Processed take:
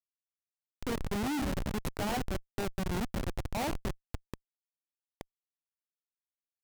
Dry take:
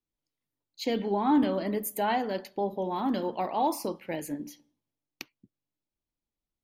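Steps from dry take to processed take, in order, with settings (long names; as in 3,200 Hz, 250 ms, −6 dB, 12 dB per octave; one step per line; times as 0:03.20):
0:02.85–0:03.50: compressor whose output falls as the input rises −30 dBFS, ratio −0.5
comparator with hysteresis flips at −26 dBFS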